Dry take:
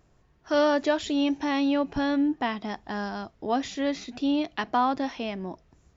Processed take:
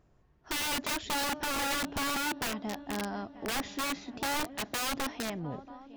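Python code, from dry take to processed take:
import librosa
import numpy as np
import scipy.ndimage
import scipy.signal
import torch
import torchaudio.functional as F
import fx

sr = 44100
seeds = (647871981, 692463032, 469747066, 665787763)

y = fx.tape_stop_end(x, sr, length_s=0.62)
y = fx.high_shelf(y, sr, hz=2300.0, db=-7.0)
y = fx.echo_swing(y, sr, ms=937, ratio=3, feedback_pct=48, wet_db=-20.5)
y = (np.mod(10.0 ** (24.0 / 20.0) * y + 1.0, 2.0) - 1.0) / 10.0 ** (24.0 / 20.0)
y = y * librosa.db_to_amplitude(-3.0)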